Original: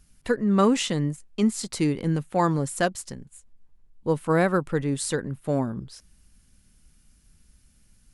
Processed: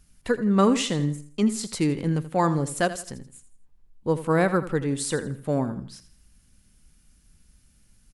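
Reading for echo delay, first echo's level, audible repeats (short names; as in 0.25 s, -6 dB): 82 ms, -13.5 dB, 3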